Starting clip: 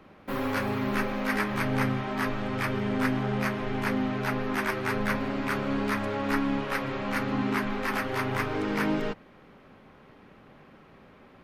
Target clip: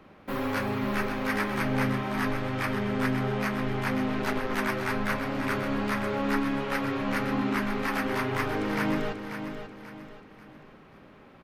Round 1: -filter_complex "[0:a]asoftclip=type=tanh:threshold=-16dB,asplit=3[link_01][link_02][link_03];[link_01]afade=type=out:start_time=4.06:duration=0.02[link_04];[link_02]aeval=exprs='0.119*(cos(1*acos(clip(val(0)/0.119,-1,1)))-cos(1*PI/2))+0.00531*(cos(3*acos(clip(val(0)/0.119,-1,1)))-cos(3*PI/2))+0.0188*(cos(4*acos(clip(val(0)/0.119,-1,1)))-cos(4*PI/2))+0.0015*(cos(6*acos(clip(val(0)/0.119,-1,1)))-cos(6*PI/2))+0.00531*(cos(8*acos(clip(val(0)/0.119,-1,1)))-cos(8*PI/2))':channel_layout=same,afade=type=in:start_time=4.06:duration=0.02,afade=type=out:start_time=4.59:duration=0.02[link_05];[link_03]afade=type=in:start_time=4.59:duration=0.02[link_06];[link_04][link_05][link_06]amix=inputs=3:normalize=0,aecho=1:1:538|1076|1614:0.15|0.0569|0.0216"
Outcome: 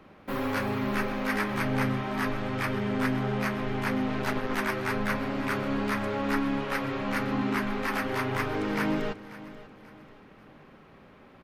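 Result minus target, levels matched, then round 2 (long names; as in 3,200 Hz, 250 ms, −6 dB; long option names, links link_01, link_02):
echo-to-direct −8 dB
-filter_complex "[0:a]asoftclip=type=tanh:threshold=-16dB,asplit=3[link_01][link_02][link_03];[link_01]afade=type=out:start_time=4.06:duration=0.02[link_04];[link_02]aeval=exprs='0.119*(cos(1*acos(clip(val(0)/0.119,-1,1)))-cos(1*PI/2))+0.00531*(cos(3*acos(clip(val(0)/0.119,-1,1)))-cos(3*PI/2))+0.0188*(cos(4*acos(clip(val(0)/0.119,-1,1)))-cos(4*PI/2))+0.0015*(cos(6*acos(clip(val(0)/0.119,-1,1)))-cos(6*PI/2))+0.00531*(cos(8*acos(clip(val(0)/0.119,-1,1)))-cos(8*PI/2))':channel_layout=same,afade=type=in:start_time=4.06:duration=0.02,afade=type=out:start_time=4.59:duration=0.02[link_05];[link_03]afade=type=in:start_time=4.59:duration=0.02[link_06];[link_04][link_05][link_06]amix=inputs=3:normalize=0,aecho=1:1:538|1076|1614|2152:0.376|0.143|0.0543|0.0206"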